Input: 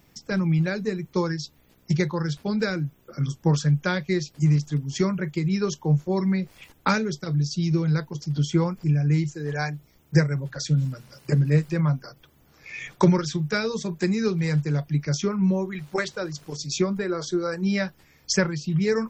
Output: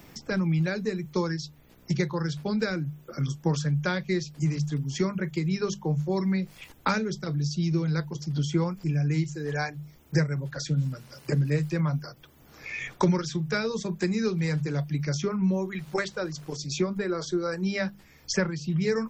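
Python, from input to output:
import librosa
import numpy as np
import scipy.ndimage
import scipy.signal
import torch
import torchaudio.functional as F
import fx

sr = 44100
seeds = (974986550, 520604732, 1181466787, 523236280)

y = fx.hum_notches(x, sr, base_hz=50, count=4)
y = fx.band_squash(y, sr, depth_pct=40)
y = F.gain(torch.from_numpy(y), -2.5).numpy()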